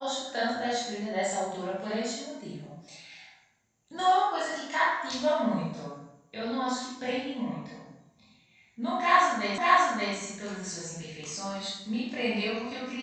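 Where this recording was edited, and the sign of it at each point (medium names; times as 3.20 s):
9.58 s: repeat of the last 0.58 s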